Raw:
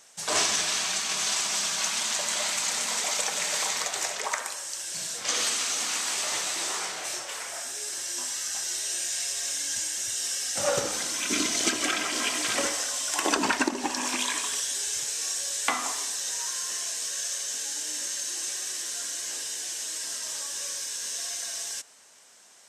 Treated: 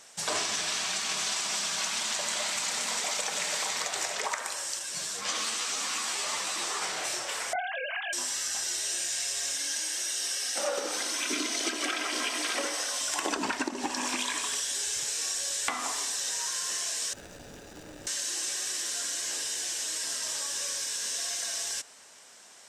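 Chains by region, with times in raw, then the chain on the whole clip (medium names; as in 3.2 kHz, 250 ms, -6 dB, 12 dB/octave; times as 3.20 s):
4.79–6.82 s: peaking EQ 1.1 kHz +5.5 dB 0.26 oct + three-phase chorus
7.53–8.13 s: formants replaced by sine waves + doubling 22 ms -11.5 dB
9.57–13.01 s: steep high-pass 250 Hz + band-stop 7.3 kHz, Q 8.2
17.13–18.07 s: median filter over 41 samples + band-stop 1.1 kHz, Q 13
whole clip: treble shelf 11 kHz -6.5 dB; band-stop 6.4 kHz, Q 30; compression 4:1, threshold -32 dBFS; trim +3.5 dB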